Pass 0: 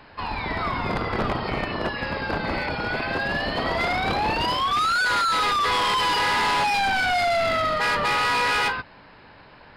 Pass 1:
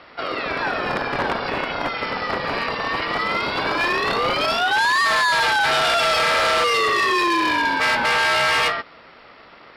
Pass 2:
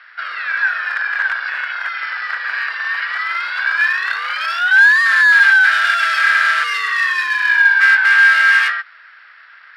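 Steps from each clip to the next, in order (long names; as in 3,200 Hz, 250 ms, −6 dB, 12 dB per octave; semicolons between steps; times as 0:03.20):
ring modulation 350 Hz; low-shelf EQ 230 Hz −11 dB; level +7 dB
high-pass with resonance 1,600 Hz, resonance Q 8.2; level −4.5 dB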